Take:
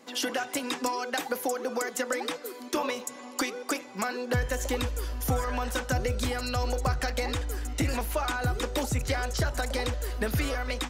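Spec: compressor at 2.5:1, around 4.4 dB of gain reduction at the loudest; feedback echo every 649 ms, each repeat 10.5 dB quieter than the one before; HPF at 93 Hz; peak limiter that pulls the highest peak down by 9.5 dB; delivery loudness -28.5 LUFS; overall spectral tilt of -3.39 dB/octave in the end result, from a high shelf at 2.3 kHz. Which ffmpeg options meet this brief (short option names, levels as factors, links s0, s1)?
-af "highpass=93,highshelf=f=2300:g=5.5,acompressor=threshold=0.0316:ratio=2.5,alimiter=limit=0.0668:level=0:latency=1,aecho=1:1:649|1298|1947:0.299|0.0896|0.0269,volume=1.88"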